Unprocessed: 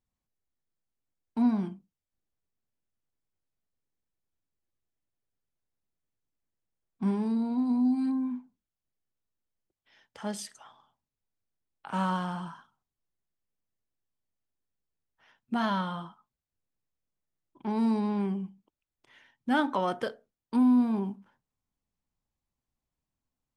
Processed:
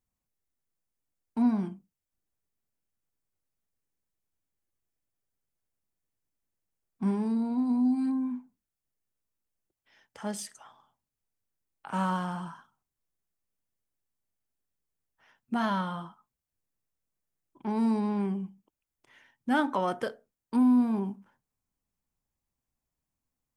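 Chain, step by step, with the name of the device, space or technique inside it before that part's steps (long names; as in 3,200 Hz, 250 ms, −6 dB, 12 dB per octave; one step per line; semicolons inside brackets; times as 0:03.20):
exciter from parts (in parallel at −4.5 dB: high-pass filter 3,400 Hz 12 dB per octave + soft clipping −36.5 dBFS, distortion −16 dB + high-pass filter 3,200 Hz 12 dB per octave)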